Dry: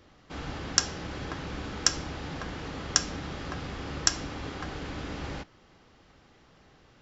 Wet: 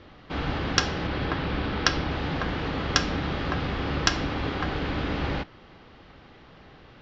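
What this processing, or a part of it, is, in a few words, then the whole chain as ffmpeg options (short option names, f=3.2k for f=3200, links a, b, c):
synthesiser wavefolder: -filter_complex "[0:a]asettb=1/sr,asplit=3[a][b][c];[a]atrim=end=1.074[d];[b]atrim=start=1.07:end=2.11,asetpts=PTS-STARTPTS,afade=t=in:d=0.004:c=qsin,afade=t=out:st=1.036:d=0.004:c=qsin,lowpass=f=5.6k:w=0.5412,lowpass=f=5.6k:w=1.3066[e];[c]atrim=start=2.106[f];[d][e]acrossfade=d=0.004:c1=hsin:c2=qsin[g];[g][f]acrossfade=d=0.004:c1=qsin:c2=hsin,aeval=exprs='0.398*(abs(mod(val(0)/0.398+3,4)-2)-1)':c=same,lowpass=f=4.3k:w=0.5412,lowpass=f=4.3k:w=1.3066,volume=8.5dB"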